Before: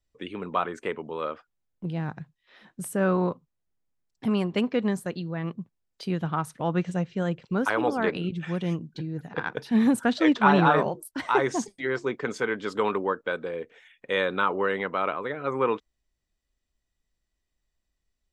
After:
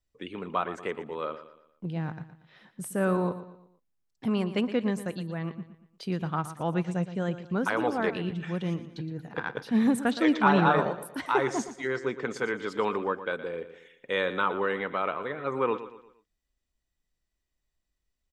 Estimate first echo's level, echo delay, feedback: −13.0 dB, 117 ms, 40%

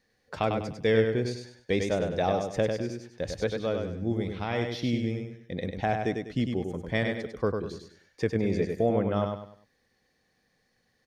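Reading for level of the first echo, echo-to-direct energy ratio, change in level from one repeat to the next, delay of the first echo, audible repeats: −5.0 dB, −4.5 dB, −9.5 dB, 99 ms, 4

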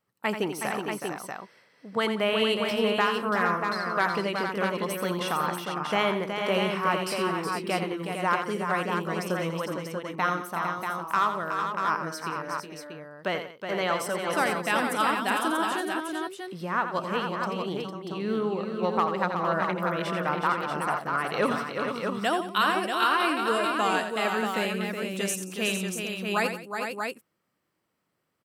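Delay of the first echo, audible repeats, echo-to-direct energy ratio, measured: 85 ms, 5, −1.0 dB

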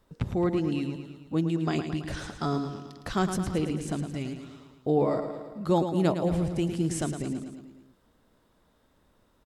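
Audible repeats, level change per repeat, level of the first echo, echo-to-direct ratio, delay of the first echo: 5, −4.5 dB, −8.5 dB, −6.5 dB, 110 ms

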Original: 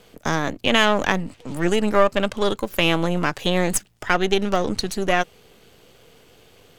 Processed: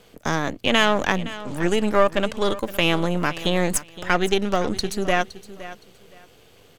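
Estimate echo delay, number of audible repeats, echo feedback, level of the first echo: 516 ms, 2, 22%, −16.0 dB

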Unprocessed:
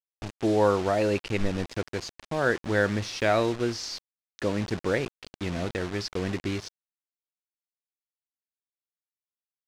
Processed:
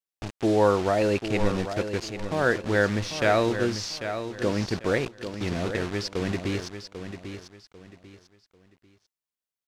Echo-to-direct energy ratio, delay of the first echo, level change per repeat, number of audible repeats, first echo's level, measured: −9.0 dB, 794 ms, −10.5 dB, 3, −9.5 dB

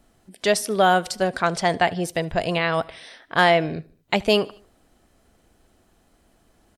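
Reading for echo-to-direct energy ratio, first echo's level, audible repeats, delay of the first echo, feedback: −22.5 dB, −24.0 dB, 2, 75 ms, 52%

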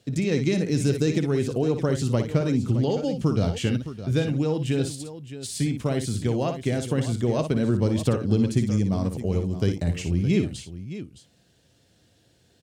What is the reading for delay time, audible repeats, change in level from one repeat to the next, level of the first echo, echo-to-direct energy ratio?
58 ms, 2, repeats not evenly spaced, −8.0 dB, −6.5 dB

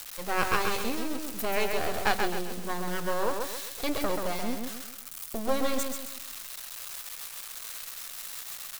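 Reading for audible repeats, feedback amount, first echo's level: 4, 39%, −4.5 dB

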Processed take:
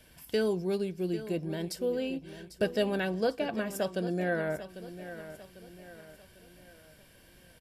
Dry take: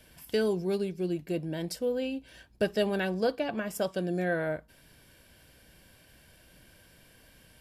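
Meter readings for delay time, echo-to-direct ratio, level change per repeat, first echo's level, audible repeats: 797 ms, −12.0 dB, −7.0 dB, −13.0 dB, 4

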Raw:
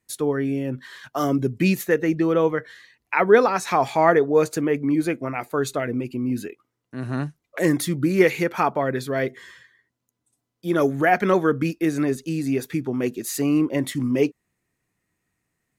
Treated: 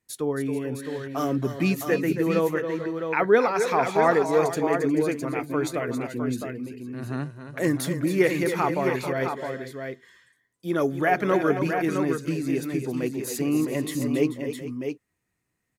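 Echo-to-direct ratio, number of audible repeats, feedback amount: −4.0 dB, 3, repeats not evenly spaced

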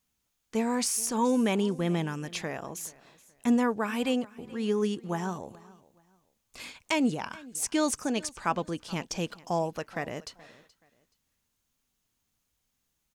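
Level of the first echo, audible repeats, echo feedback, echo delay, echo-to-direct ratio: −21.5 dB, 2, 27%, 426 ms, −21.0 dB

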